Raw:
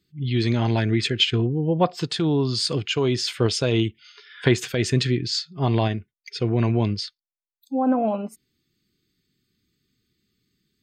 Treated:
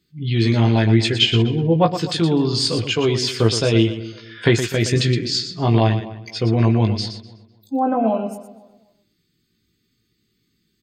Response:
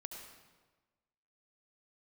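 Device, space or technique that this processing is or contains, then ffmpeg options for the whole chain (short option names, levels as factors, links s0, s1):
slapback doubling: -filter_complex "[0:a]asplit=3[s0][s1][s2];[s1]adelay=18,volume=0.562[s3];[s2]adelay=118,volume=0.355[s4];[s0][s3][s4]amix=inputs=3:normalize=0,asplit=2[s5][s6];[s6]adelay=251,lowpass=f=2400:p=1,volume=0.141,asplit=2[s7][s8];[s8]adelay=251,lowpass=f=2400:p=1,volume=0.28,asplit=2[s9][s10];[s10]adelay=251,lowpass=f=2400:p=1,volume=0.28[s11];[s5][s7][s9][s11]amix=inputs=4:normalize=0,volume=1.33"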